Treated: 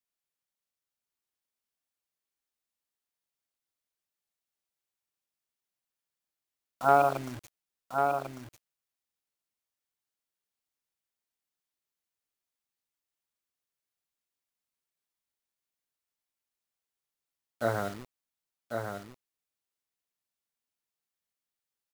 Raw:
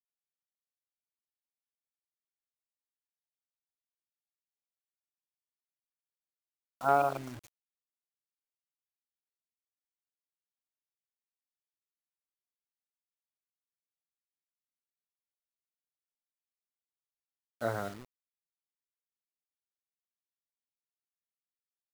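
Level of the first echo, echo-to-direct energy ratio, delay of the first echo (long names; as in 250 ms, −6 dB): −5.5 dB, −5.5 dB, 1,096 ms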